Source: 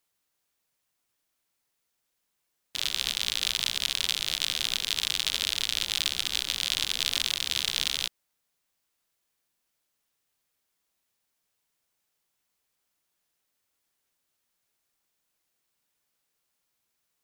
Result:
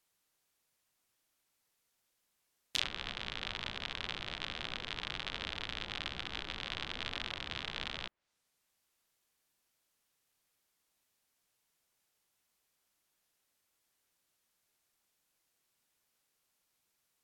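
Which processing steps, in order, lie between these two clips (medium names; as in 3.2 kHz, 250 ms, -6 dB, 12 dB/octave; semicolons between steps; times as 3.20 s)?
low-pass that closes with the level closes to 1.6 kHz, closed at -29.5 dBFS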